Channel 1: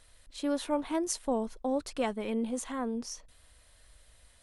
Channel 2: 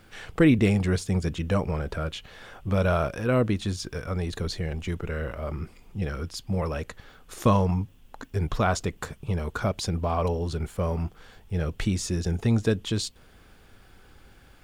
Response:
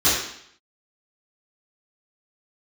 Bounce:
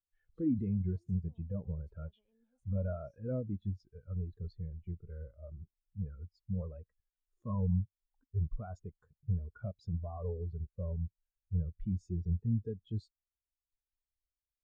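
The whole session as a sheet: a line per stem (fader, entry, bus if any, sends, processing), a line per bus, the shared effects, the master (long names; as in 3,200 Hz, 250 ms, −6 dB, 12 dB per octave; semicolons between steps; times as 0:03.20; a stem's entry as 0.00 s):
−3.0 dB, 0.00 s, no send, brickwall limiter −25 dBFS, peak gain reduction 10 dB; every bin compressed towards the loudest bin 2 to 1
−6.0 dB, 0.00 s, no send, brickwall limiter −19 dBFS, peak gain reduction 10.5 dB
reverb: not used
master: every bin expanded away from the loudest bin 2.5 to 1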